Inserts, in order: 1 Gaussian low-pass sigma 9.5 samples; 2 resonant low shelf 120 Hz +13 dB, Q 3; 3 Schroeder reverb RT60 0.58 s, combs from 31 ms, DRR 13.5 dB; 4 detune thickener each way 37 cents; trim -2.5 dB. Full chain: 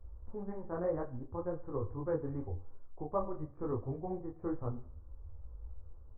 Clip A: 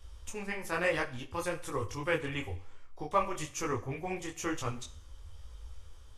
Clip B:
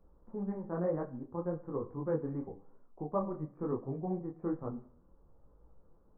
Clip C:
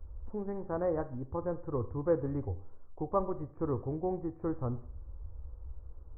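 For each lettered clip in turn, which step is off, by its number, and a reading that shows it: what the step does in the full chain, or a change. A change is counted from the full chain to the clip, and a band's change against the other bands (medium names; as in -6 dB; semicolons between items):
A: 1, 2 kHz band +22.0 dB; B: 2, crest factor change +2.0 dB; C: 4, loudness change +4.0 LU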